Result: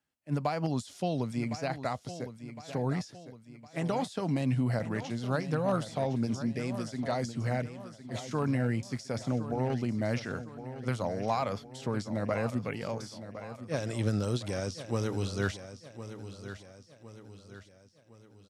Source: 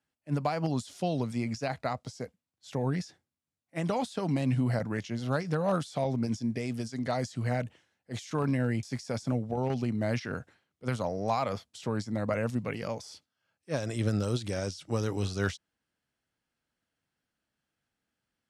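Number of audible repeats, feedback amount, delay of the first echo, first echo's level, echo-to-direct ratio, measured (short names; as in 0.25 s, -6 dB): 4, 46%, 1.06 s, -12.0 dB, -11.0 dB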